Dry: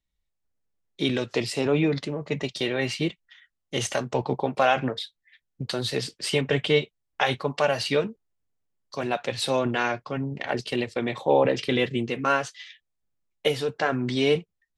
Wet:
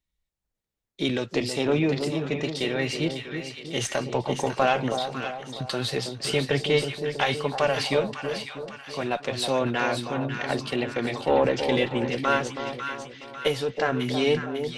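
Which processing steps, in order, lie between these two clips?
one-sided soft clipper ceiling −10.5 dBFS
echo with a time of its own for lows and highs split 1,100 Hz, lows 322 ms, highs 549 ms, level −7 dB

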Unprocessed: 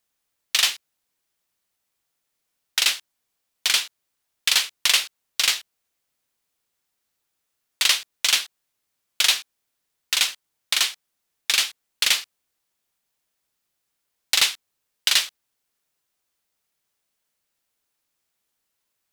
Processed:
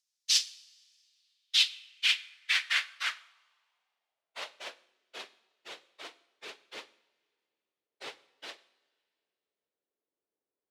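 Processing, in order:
time stretch by phase vocoder 0.56×
coupled-rooms reverb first 0.62 s, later 2.5 s, from −18 dB, DRR 14 dB
band-pass filter sweep 5,300 Hz → 410 Hz, 0:01.00–0:05.00
level +4.5 dB

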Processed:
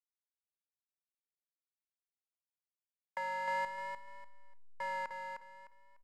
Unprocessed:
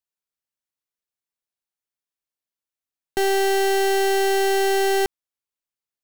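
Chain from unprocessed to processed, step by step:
spike at every zero crossing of −32.5 dBFS
downward expander −24 dBFS
downward compressor 4 to 1, threshold −31 dBFS, peak gain reduction 9 dB
single-sideband voice off tune +170 Hz 560–2,200 Hz
0:03.64–0:04.81: gate with flip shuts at −40 dBFS, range −41 dB
slack as between gear wheels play −40 dBFS
repeating echo 300 ms, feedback 26%, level −5.5 dB
convolution reverb RT60 0.35 s, pre-delay 28 ms, DRR 16 dB
pitch vibrato 0.53 Hz 40 cents
level −2.5 dB

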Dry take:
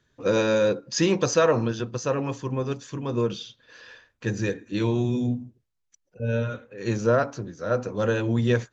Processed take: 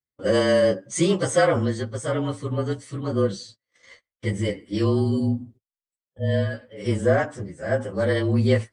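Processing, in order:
partials spread apart or drawn together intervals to 109%
noise gate −50 dBFS, range −30 dB
level +3.5 dB

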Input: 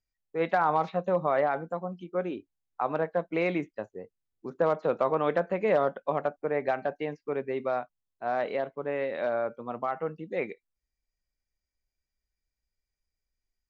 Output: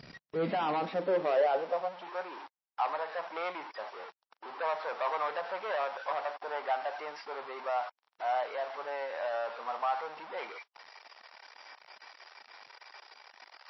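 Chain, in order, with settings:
converter with a step at zero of −30.5 dBFS
high-shelf EQ 2,600 Hz −9 dB
hard clipping −23 dBFS, distortion −12 dB
high-pass filter sweep 170 Hz → 880 Hz, 0:00.35–0:02.14
level −4.5 dB
MP3 24 kbit/s 16,000 Hz

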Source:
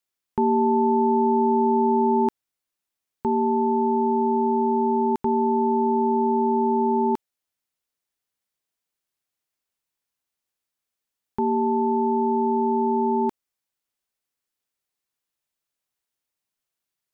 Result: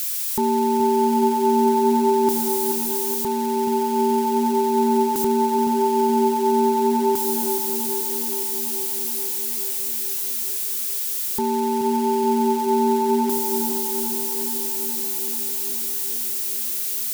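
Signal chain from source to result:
spike at every zero crossing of −21.5 dBFS
tape delay 426 ms, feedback 81%, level −5 dB, low-pass 1,100 Hz

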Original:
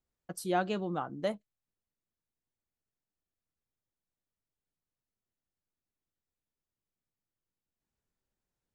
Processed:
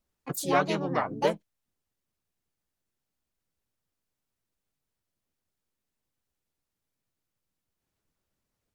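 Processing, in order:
harmonic and percussive parts rebalanced percussive +5 dB
pitch-shifted copies added −4 semitones −1 dB, +7 semitones −3 dB

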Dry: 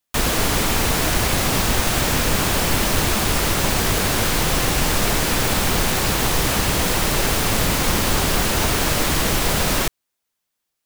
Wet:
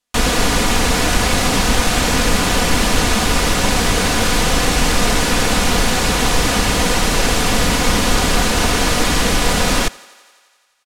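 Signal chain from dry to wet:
low-pass filter 9,400 Hz 12 dB per octave
comb filter 4.1 ms, depth 42%
on a send: feedback echo with a high-pass in the loop 86 ms, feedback 75%, high-pass 260 Hz, level −23 dB
on the sum: level +3.5 dB

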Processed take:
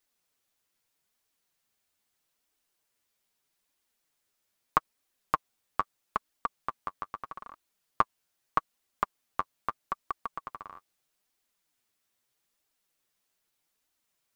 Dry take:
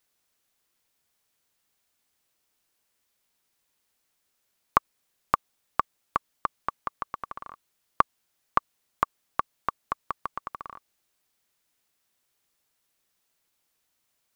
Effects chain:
flanger 0.79 Hz, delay 2.4 ms, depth 9 ms, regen +23%

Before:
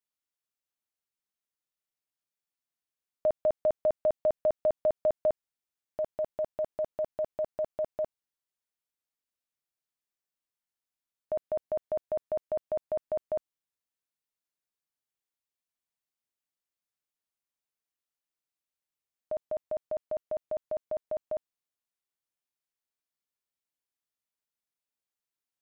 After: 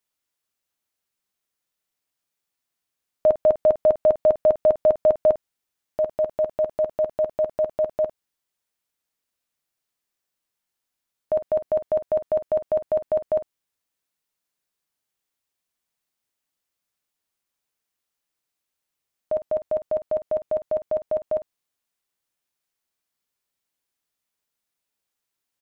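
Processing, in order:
ambience of single reflections 11 ms −18 dB, 50 ms −14 dB
level +8.5 dB

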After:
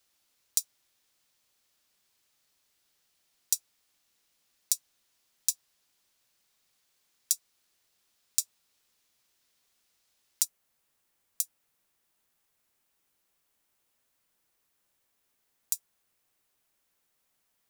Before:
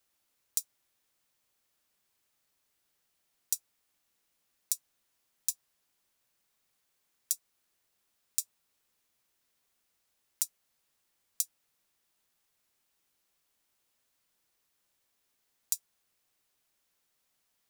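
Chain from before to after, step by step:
parametric band 4,600 Hz +5 dB 1.7 octaves, from 0:10.45 −3 dB
level +2 dB

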